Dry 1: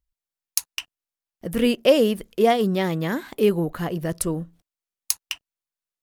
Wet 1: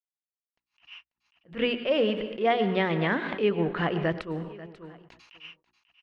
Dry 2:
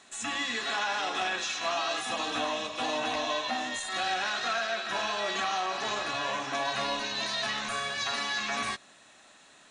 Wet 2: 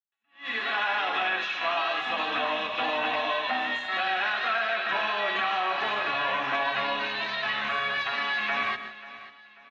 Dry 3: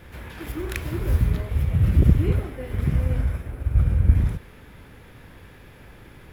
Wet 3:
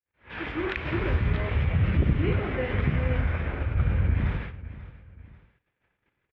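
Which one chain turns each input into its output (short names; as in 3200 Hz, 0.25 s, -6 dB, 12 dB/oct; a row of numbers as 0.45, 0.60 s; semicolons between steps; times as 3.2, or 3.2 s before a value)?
tilt +3 dB/oct; plate-style reverb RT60 0.72 s, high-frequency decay 0.7×, pre-delay 85 ms, DRR 13.5 dB; soft clip -4.5 dBFS; gate -43 dBFS, range -57 dB; feedback echo 0.539 s, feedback 39%, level -24 dB; compressor 2.5:1, threshold -37 dBFS; LPF 2800 Hz 24 dB/oct; low shelf 240 Hz +4 dB; AGC gain up to 8 dB; notches 60/120/180/240/300/360 Hz; attack slew limiter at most 210 dB/s; match loudness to -27 LUFS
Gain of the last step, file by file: +2.5, +3.0, +3.0 dB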